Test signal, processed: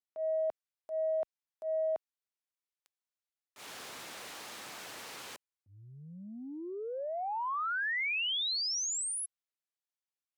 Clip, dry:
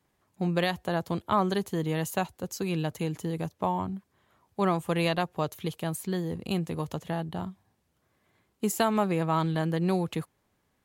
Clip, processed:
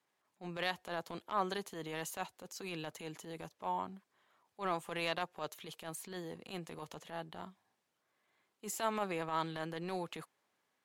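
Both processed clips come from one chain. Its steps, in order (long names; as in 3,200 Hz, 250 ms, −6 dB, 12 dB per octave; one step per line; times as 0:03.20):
meter weighting curve A
transient designer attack −11 dB, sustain +1 dB
level −5 dB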